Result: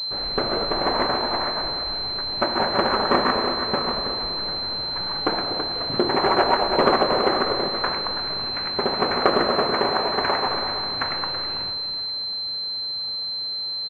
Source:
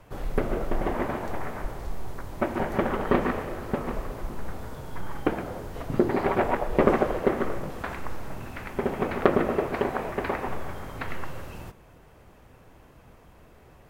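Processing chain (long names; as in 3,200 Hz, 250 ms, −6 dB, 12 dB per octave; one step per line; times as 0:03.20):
variable-slope delta modulation 64 kbit/s
delay that swaps between a low-pass and a high-pass 244 ms, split 910 Hz, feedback 60%, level −11 dB
dynamic equaliser 1,100 Hz, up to +4 dB, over −39 dBFS, Q 0.98
single-tap delay 329 ms −10 dB
in parallel at +0.5 dB: brickwall limiter −14 dBFS, peak gain reduction 10.5 dB
on the sum: spectral tilt +3 dB per octave
switching amplifier with a slow clock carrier 4,100 Hz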